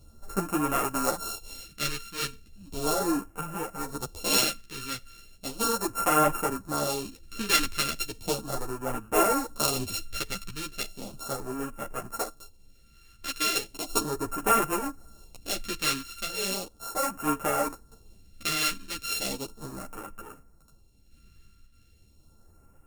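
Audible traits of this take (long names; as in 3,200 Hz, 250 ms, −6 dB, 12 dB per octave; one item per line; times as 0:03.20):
a buzz of ramps at a fixed pitch in blocks of 32 samples
phaser sweep stages 2, 0.36 Hz, lowest notch 710–3,900 Hz
sample-and-hold tremolo 1.8 Hz, depth 55%
a shimmering, thickened sound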